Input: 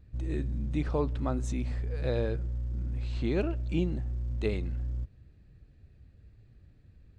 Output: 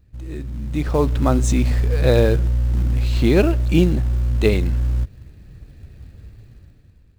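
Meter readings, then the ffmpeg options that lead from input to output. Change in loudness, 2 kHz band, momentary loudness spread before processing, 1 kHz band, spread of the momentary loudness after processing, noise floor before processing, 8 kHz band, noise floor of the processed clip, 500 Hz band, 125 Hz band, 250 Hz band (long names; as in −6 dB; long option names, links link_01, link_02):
+13.5 dB, +14.5 dB, 5 LU, +13.0 dB, 11 LU, −58 dBFS, can't be measured, −52 dBFS, +13.5 dB, +13.5 dB, +13.0 dB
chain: -filter_complex "[0:a]highshelf=frequency=6000:gain=6,dynaudnorm=framelen=210:gausssize=9:maxgain=15dB,asplit=2[link_01][link_02];[link_02]acrusher=bits=4:mode=log:mix=0:aa=0.000001,volume=-5.5dB[link_03];[link_01][link_03]amix=inputs=2:normalize=0,volume=-3dB"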